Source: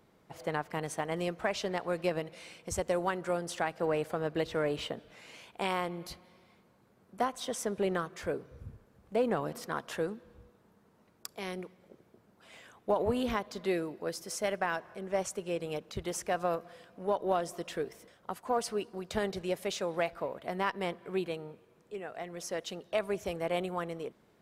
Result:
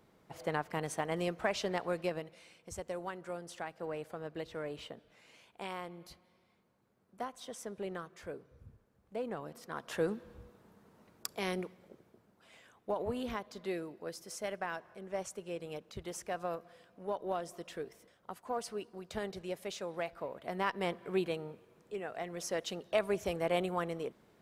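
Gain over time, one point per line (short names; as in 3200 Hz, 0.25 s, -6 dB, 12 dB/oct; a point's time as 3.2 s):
1.84 s -1 dB
2.47 s -9.5 dB
9.62 s -9.5 dB
10.11 s +3 dB
11.57 s +3 dB
12.59 s -6.5 dB
20.03 s -6.5 dB
20.97 s +0.5 dB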